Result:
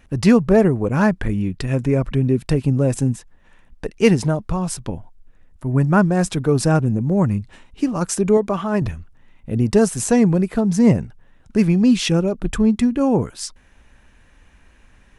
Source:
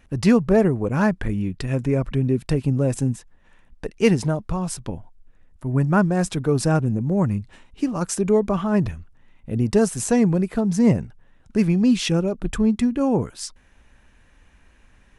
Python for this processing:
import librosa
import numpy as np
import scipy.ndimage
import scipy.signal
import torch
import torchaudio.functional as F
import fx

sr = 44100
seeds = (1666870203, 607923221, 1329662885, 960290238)

y = fx.low_shelf(x, sr, hz=160.0, db=-12.0, at=(8.37, 8.82))
y = F.gain(torch.from_numpy(y), 3.0).numpy()